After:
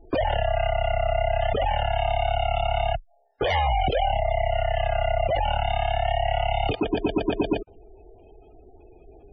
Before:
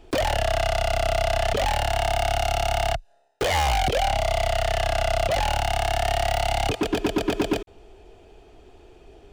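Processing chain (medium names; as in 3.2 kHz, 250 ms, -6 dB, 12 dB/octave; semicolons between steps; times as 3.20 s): spectral gate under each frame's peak -20 dB strong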